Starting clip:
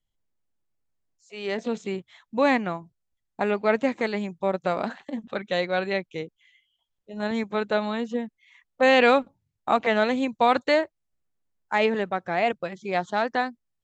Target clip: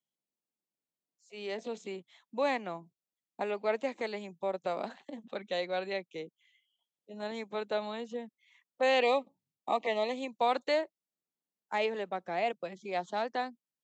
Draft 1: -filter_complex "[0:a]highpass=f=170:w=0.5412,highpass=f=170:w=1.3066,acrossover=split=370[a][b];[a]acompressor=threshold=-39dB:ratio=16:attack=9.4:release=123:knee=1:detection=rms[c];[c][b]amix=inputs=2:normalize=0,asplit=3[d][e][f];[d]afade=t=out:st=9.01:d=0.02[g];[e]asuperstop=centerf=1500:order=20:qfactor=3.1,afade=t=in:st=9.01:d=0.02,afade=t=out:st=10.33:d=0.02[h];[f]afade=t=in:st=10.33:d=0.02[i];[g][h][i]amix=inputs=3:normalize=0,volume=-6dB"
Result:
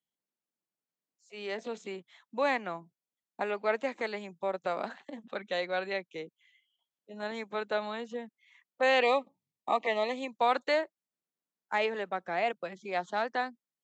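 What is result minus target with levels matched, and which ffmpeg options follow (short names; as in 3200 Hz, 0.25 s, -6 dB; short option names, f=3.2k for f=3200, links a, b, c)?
2000 Hz band +2.5 dB
-filter_complex "[0:a]highpass=f=170:w=0.5412,highpass=f=170:w=1.3066,equalizer=f=1.5k:t=o:w=0.99:g=-7,acrossover=split=370[a][b];[a]acompressor=threshold=-39dB:ratio=16:attack=9.4:release=123:knee=1:detection=rms[c];[c][b]amix=inputs=2:normalize=0,asplit=3[d][e][f];[d]afade=t=out:st=9.01:d=0.02[g];[e]asuperstop=centerf=1500:order=20:qfactor=3.1,afade=t=in:st=9.01:d=0.02,afade=t=out:st=10.33:d=0.02[h];[f]afade=t=in:st=10.33:d=0.02[i];[g][h][i]amix=inputs=3:normalize=0,volume=-6dB"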